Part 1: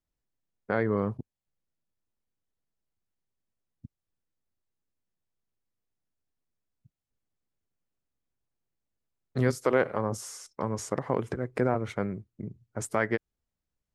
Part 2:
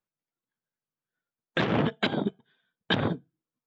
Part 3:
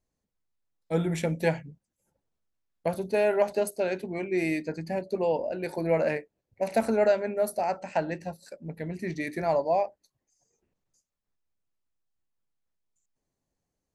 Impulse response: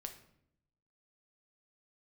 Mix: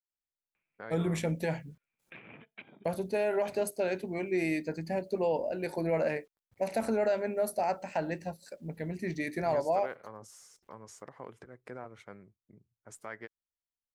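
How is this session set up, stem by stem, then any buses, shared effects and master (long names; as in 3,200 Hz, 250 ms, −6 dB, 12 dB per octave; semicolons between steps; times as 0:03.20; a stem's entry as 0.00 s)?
−13.0 dB, 0.10 s, no send, low-shelf EQ 490 Hz −9 dB
−17.5 dB, 0.55 s, no send, upward compression, threshold −42 dBFS; low-pass with resonance 2,400 Hz, resonance Q 10; automatic ducking −12 dB, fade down 0.95 s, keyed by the third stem
−2.0 dB, 0.00 s, no send, brickwall limiter −18.5 dBFS, peak gain reduction 8 dB; bit reduction 12 bits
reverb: not used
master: no processing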